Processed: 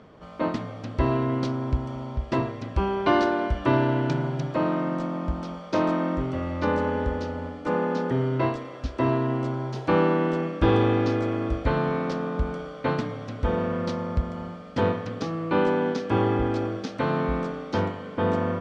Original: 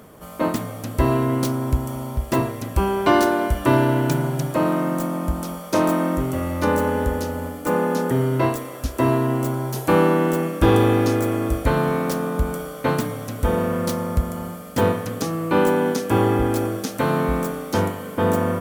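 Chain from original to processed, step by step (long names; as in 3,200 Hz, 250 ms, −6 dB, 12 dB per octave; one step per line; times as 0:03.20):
low-pass filter 4,800 Hz 24 dB per octave
level −4.5 dB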